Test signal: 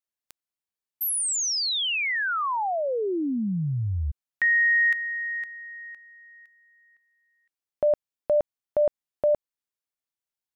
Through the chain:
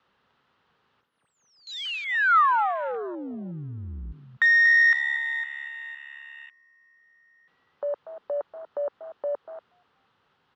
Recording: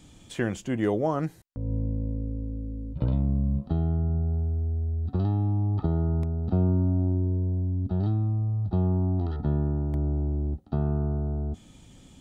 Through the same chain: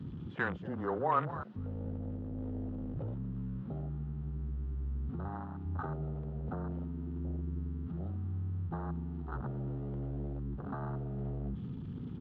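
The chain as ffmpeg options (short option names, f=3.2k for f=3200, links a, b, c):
-filter_complex "[0:a]aeval=exprs='val(0)+0.5*0.0188*sgn(val(0))':c=same,highpass=140,equalizer=f=220:t=q:w=4:g=-4,equalizer=f=330:t=q:w=4:g=-10,equalizer=f=650:t=q:w=4:g=-9,equalizer=f=1.3k:t=q:w=4:g=5,equalizer=f=2.3k:t=q:w=4:g=-7,lowpass=f=3.1k:w=0.5412,lowpass=f=3.1k:w=1.3066,acrossover=split=700[a][b];[a]acompressor=threshold=-38dB:ratio=20:attack=0.33:release=91:detection=rms[c];[c][b]amix=inputs=2:normalize=0,afreqshift=-16,asplit=2[d][e];[e]adynamicsmooth=sensitivity=1.5:basefreq=1.1k,volume=1dB[f];[d][f]amix=inputs=2:normalize=0,asplit=4[g][h][i][j];[h]adelay=238,afreqshift=70,volume=-12dB[k];[i]adelay=476,afreqshift=140,volume=-22.5dB[l];[j]adelay=714,afreqshift=210,volume=-32.9dB[m];[g][k][l][m]amix=inputs=4:normalize=0,afwtdn=0.0178,volume=-1.5dB"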